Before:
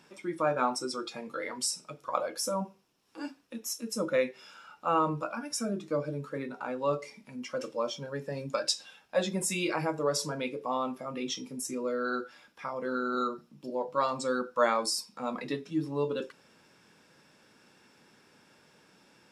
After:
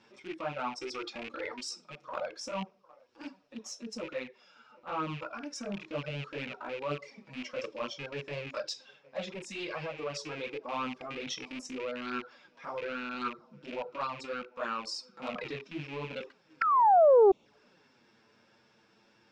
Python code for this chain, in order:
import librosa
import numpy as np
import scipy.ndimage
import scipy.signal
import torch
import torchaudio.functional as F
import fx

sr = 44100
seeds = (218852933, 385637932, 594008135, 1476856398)

y = fx.rattle_buzz(x, sr, strikes_db=-45.0, level_db=-28.0)
y = fx.rider(y, sr, range_db=4, speed_s=0.5)
y = scipy.signal.sosfilt(scipy.signal.butter(4, 6000.0, 'lowpass', fs=sr, output='sos'), y)
y = fx.echo_banded(y, sr, ms=755, feedback_pct=52, hz=720.0, wet_db=-23.5)
y = fx.transient(y, sr, attack_db=-8, sustain_db=-3)
y = fx.spec_paint(y, sr, seeds[0], shape='fall', start_s=16.61, length_s=0.71, low_hz=370.0, high_hz=1400.0, level_db=-18.0)
y = fx.env_flanger(y, sr, rest_ms=9.5, full_db=-24.0)
y = fx.doppler_dist(y, sr, depth_ms=0.27)